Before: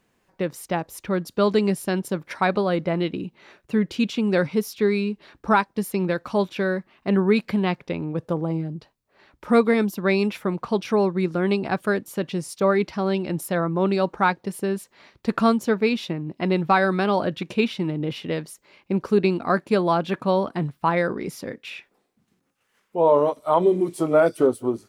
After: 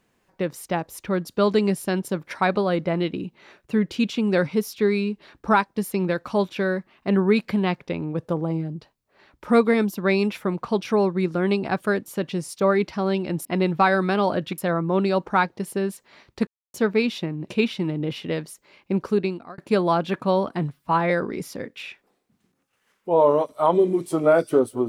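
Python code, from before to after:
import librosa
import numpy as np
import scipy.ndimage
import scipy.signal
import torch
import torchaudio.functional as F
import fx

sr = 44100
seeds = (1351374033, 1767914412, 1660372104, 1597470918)

y = fx.edit(x, sr, fx.silence(start_s=15.34, length_s=0.27),
    fx.move(start_s=16.35, length_s=1.13, to_s=13.45),
    fx.fade_out_span(start_s=19.02, length_s=0.56),
    fx.stretch_span(start_s=20.73, length_s=0.25, factor=1.5), tone=tone)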